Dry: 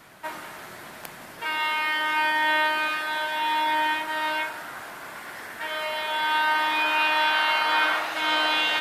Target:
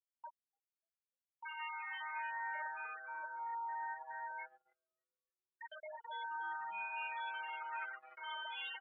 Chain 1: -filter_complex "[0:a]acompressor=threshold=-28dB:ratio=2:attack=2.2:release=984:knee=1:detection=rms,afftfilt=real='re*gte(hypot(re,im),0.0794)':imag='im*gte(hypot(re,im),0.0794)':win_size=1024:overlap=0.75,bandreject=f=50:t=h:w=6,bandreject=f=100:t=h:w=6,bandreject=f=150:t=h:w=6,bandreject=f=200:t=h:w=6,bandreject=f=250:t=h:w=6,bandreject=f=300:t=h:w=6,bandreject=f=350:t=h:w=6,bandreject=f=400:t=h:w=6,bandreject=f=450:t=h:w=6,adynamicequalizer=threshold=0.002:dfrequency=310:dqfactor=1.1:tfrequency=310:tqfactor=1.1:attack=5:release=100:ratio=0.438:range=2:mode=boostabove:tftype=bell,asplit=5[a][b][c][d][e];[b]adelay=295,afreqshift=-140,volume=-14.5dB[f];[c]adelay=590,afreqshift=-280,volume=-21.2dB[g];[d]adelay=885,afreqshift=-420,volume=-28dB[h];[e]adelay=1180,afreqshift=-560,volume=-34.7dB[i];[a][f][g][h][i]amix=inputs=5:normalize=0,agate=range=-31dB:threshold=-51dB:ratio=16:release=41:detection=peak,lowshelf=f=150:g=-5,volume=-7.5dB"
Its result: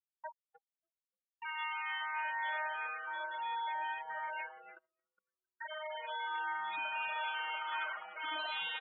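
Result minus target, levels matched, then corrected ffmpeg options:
compressor: peak gain reduction -4 dB
-filter_complex "[0:a]acompressor=threshold=-35.5dB:ratio=2:attack=2.2:release=984:knee=1:detection=rms,afftfilt=real='re*gte(hypot(re,im),0.0794)':imag='im*gte(hypot(re,im),0.0794)':win_size=1024:overlap=0.75,bandreject=f=50:t=h:w=6,bandreject=f=100:t=h:w=6,bandreject=f=150:t=h:w=6,bandreject=f=200:t=h:w=6,bandreject=f=250:t=h:w=6,bandreject=f=300:t=h:w=6,bandreject=f=350:t=h:w=6,bandreject=f=400:t=h:w=6,bandreject=f=450:t=h:w=6,adynamicequalizer=threshold=0.002:dfrequency=310:dqfactor=1.1:tfrequency=310:tqfactor=1.1:attack=5:release=100:ratio=0.438:range=2:mode=boostabove:tftype=bell,asplit=5[a][b][c][d][e];[b]adelay=295,afreqshift=-140,volume=-14.5dB[f];[c]adelay=590,afreqshift=-280,volume=-21.2dB[g];[d]adelay=885,afreqshift=-420,volume=-28dB[h];[e]adelay=1180,afreqshift=-560,volume=-34.7dB[i];[a][f][g][h][i]amix=inputs=5:normalize=0,agate=range=-31dB:threshold=-51dB:ratio=16:release=41:detection=peak,lowshelf=f=150:g=-5,volume=-7.5dB"

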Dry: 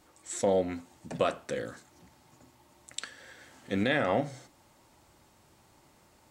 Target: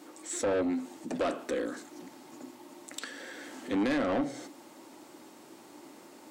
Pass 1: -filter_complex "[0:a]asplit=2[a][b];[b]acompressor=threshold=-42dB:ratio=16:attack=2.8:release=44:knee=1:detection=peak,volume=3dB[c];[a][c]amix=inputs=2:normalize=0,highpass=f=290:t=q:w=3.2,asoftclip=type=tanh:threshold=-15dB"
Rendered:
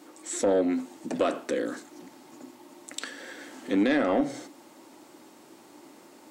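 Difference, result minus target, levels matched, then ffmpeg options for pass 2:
compressor: peak gain reduction -8.5 dB; soft clip: distortion -9 dB
-filter_complex "[0:a]asplit=2[a][b];[b]acompressor=threshold=-51dB:ratio=16:attack=2.8:release=44:knee=1:detection=peak,volume=3dB[c];[a][c]amix=inputs=2:normalize=0,highpass=f=290:t=q:w=3.2,asoftclip=type=tanh:threshold=-24.5dB"

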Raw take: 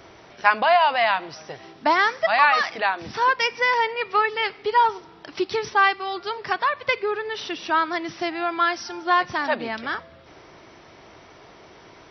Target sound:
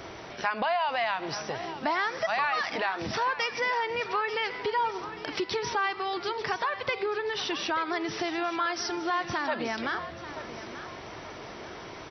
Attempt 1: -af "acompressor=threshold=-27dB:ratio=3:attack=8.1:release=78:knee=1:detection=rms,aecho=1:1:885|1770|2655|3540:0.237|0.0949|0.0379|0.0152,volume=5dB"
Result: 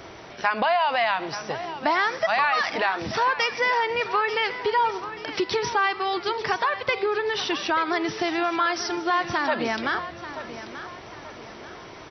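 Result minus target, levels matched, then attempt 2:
compressor: peak gain reduction -5.5 dB
-af "acompressor=threshold=-35.5dB:ratio=3:attack=8.1:release=78:knee=1:detection=rms,aecho=1:1:885|1770|2655|3540:0.237|0.0949|0.0379|0.0152,volume=5dB"

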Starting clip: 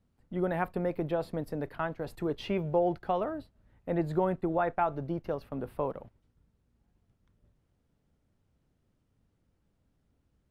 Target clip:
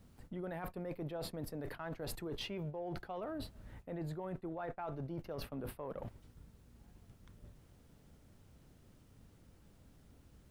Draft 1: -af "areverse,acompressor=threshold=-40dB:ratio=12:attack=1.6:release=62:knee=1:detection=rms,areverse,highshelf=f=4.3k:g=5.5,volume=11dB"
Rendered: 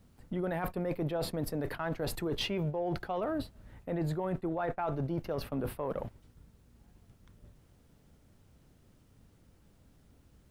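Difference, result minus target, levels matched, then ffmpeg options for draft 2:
compressor: peak gain reduction -8.5 dB
-af "areverse,acompressor=threshold=-49.5dB:ratio=12:attack=1.6:release=62:knee=1:detection=rms,areverse,highshelf=f=4.3k:g=5.5,volume=11dB"

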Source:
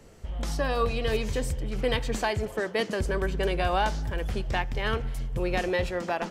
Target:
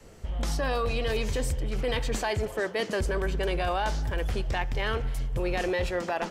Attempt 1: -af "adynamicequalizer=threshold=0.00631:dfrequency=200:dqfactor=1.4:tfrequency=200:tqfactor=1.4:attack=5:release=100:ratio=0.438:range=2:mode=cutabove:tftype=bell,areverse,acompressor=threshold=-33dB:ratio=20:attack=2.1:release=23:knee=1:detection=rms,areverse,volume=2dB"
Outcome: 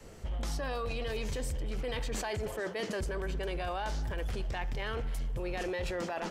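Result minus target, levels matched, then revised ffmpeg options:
compressor: peak gain reduction +7.5 dB
-af "adynamicequalizer=threshold=0.00631:dfrequency=200:dqfactor=1.4:tfrequency=200:tqfactor=1.4:attack=5:release=100:ratio=0.438:range=2:mode=cutabove:tftype=bell,areverse,acompressor=threshold=-25dB:ratio=20:attack=2.1:release=23:knee=1:detection=rms,areverse,volume=2dB"

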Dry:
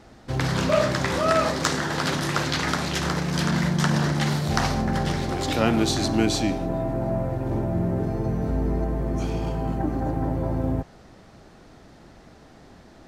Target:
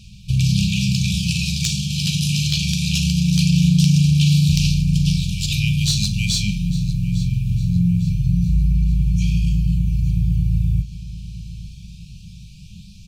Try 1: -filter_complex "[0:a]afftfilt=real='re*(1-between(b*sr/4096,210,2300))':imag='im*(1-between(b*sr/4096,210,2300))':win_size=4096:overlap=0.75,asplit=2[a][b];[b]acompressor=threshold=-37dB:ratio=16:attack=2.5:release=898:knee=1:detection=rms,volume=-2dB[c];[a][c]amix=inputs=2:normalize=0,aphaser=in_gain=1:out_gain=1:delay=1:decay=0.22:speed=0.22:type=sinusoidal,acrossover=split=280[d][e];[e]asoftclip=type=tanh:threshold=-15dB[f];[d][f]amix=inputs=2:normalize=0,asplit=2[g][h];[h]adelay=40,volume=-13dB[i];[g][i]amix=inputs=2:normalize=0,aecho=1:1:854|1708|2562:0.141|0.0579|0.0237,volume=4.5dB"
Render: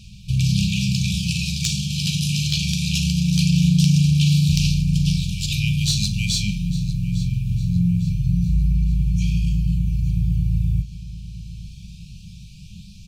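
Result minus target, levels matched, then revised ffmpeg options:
compressor: peak gain reduction +10.5 dB
-filter_complex "[0:a]afftfilt=real='re*(1-between(b*sr/4096,210,2300))':imag='im*(1-between(b*sr/4096,210,2300))':win_size=4096:overlap=0.75,asplit=2[a][b];[b]acompressor=threshold=-26dB:ratio=16:attack=2.5:release=898:knee=1:detection=rms,volume=-2dB[c];[a][c]amix=inputs=2:normalize=0,aphaser=in_gain=1:out_gain=1:delay=1:decay=0.22:speed=0.22:type=sinusoidal,acrossover=split=280[d][e];[e]asoftclip=type=tanh:threshold=-15dB[f];[d][f]amix=inputs=2:normalize=0,asplit=2[g][h];[h]adelay=40,volume=-13dB[i];[g][i]amix=inputs=2:normalize=0,aecho=1:1:854|1708|2562:0.141|0.0579|0.0237,volume=4.5dB"

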